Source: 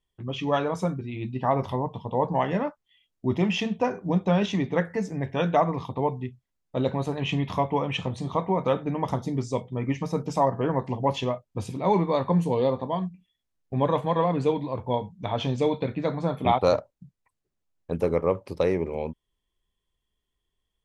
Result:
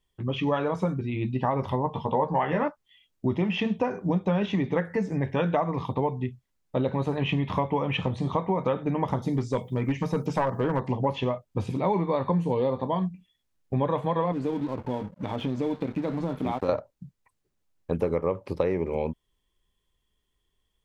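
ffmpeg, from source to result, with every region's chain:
-filter_complex "[0:a]asettb=1/sr,asplit=3[a][b][c];[a]atrim=end=1.844[d];[b]atrim=start=1.84:end=2.68,asetpts=PTS-STARTPTS,afade=t=in:d=0.004:c=qsin,afade=t=out:st=0.836:d=0.004:c=qsin,equalizer=f=1.4k:t=o:w=2.1:g=6,asplit=2[e][f];[f]adelay=13,volume=-7dB[g];[e][g]amix=inputs=2:normalize=0,atrim=end_sample=37044[h];[c]atrim=start=2.676[i];[d][h]acrossfade=d=0.004:c1=hsin:c2=qsin[j];[j][i]acrossfade=d=0.004:c1=qsin:c2=hsin,asettb=1/sr,asplit=3[k][l][m];[k]atrim=end=9.224[n];[l]atrim=start=9.22:end=10.8,asetpts=PTS-STARTPTS,afade=t=in:d=0.004:c=qsin,afade=t=out:st=1.576:d=0.004:c=qsin,aemphasis=mode=production:type=50fm,aeval=exprs='clip(val(0),-1,0.1)':c=same[o];[m]atrim=start=10.796[p];[n][o]acrossfade=d=0.004:c1=hsin:c2=qsin[q];[q][p]acrossfade=d=0.004:c1=qsin:c2=hsin,asettb=1/sr,asplit=3[r][s][t];[r]atrim=end=14.324[u];[s]atrim=start=14.32:end=16.69,asetpts=PTS-STARTPTS,afade=t=in:d=0.004:c=qsin,afade=t=out:st=2.366:d=0.004:c=qsin,equalizer=f=270:w=1.4:g=9.5,acompressor=threshold=-32dB:ratio=2.5:attack=3.2:release=140:knee=1:detection=peak,aeval=exprs='sgn(val(0))*max(abs(val(0))-0.00473,0)':c=same[v];[t]atrim=start=16.686[w];[u][v]acrossfade=d=0.004:c1=hsin:c2=qsin[x];[x][w]acrossfade=d=0.004:c1=qsin:c2=hsin,acrossover=split=3400[y][z];[z]acompressor=threshold=-59dB:ratio=4:attack=1:release=60[aa];[y][aa]amix=inputs=2:normalize=0,bandreject=f=690:w=18,acompressor=threshold=-27dB:ratio=4,volume=4.5dB"

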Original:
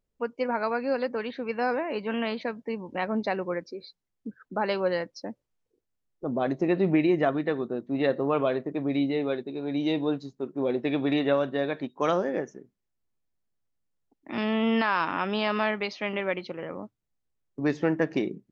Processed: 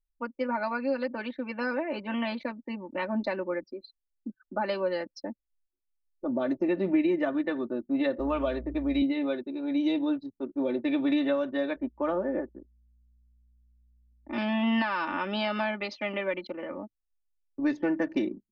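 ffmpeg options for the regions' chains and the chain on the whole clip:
-filter_complex "[0:a]asettb=1/sr,asplit=3[a][b][c];[a]atrim=end=8.194[d];[b]atrim=start=8.19:end=9.02,asetpts=PTS-STARTPTS,afade=t=in:d=0.004:c=qsin,afade=t=out:st=0.826:d=0.004:c=qsin,highpass=220,aeval=exprs='val(0)+0.0112*(sin(2*PI*60*n/s)+sin(2*PI*2*60*n/s)/2+sin(2*PI*3*60*n/s)/3+sin(2*PI*4*60*n/s)/4+sin(2*PI*5*60*n/s)/5)':c=same,highshelf=f=4.2k:g=7.5[e];[c]atrim=start=9.016[f];[d][e]acrossfade=d=0.004:c1=hsin:c2=qsin[g];[g][f]acrossfade=d=0.004:c1=qsin:c2=hsin,asettb=1/sr,asplit=3[h][i][j];[h]atrim=end=11.764[k];[i]atrim=start=11.76:end=14.33,asetpts=PTS-STARTPTS,afade=t=in:d=0.004:c=qsin,afade=t=out:st=2.566:d=0.004:c=qsin,lowpass=1.5k,aeval=exprs='val(0)+0.00178*(sin(2*PI*60*n/s)+sin(2*PI*2*60*n/s)/2+sin(2*PI*3*60*n/s)/3+sin(2*PI*4*60*n/s)/4+sin(2*PI*5*60*n/s)/5)':c=same[l];[j]atrim=start=14.326[m];[k][l]acrossfade=d=0.004:c1=hsin:c2=qsin[n];[n][m]acrossfade=d=0.004:c1=qsin:c2=hsin,anlmdn=0.158,aecho=1:1:3.4:0.98,acrossover=split=250[o][p];[p]acompressor=threshold=-23dB:ratio=3[q];[o][q]amix=inputs=2:normalize=0,volume=-3.5dB"

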